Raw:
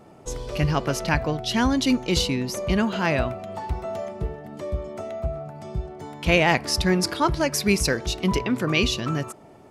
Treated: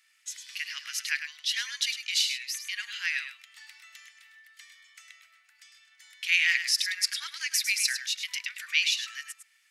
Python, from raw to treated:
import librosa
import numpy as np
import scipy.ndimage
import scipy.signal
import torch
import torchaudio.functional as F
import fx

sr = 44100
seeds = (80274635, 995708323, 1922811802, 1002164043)

y = scipy.signal.sosfilt(scipy.signal.ellip(4, 1.0, 70, 1800.0, 'highpass', fs=sr, output='sos'), x)
y = y + 10.0 ** (-9.0 / 20.0) * np.pad(y, (int(104 * sr / 1000.0), 0))[:len(y)]